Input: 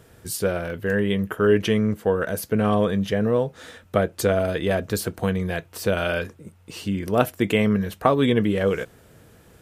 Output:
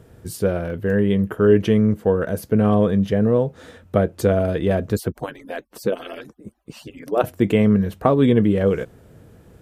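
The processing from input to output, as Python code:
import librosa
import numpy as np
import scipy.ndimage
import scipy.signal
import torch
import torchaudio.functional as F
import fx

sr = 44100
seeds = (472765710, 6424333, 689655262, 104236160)

y = fx.hpss_only(x, sr, part='percussive', at=(4.95, 7.24))
y = fx.tilt_shelf(y, sr, db=5.5, hz=860.0)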